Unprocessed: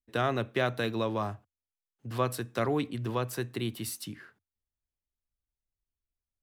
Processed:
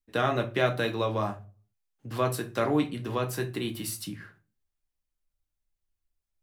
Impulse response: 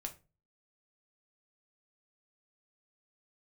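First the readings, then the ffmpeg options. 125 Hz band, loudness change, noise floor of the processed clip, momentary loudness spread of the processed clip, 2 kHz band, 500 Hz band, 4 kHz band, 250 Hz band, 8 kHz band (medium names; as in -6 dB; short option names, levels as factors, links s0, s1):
+1.5 dB, +2.5 dB, -84 dBFS, 12 LU, +2.5 dB, +3.0 dB, +2.5 dB, +3.0 dB, +2.5 dB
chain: -filter_complex "[1:a]atrim=start_sample=2205[s0];[0:a][s0]afir=irnorm=-1:irlink=0,volume=1.78"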